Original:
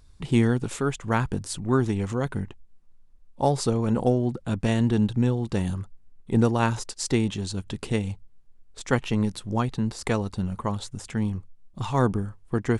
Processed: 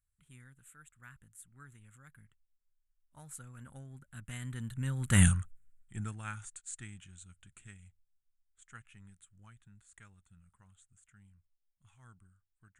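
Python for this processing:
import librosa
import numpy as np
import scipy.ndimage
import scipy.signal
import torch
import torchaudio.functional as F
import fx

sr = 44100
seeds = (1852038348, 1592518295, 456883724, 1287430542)

y = fx.doppler_pass(x, sr, speed_mps=26, closest_m=1.3, pass_at_s=5.22)
y = fx.curve_eq(y, sr, hz=(130.0, 420.0, 980.0, 1400.0, 3400.0, 5100.0, 7400.0), db=(0, -17, -9, 8, 0, -13, 13))
y = y * 10.0 ** (8.5 / 20.0)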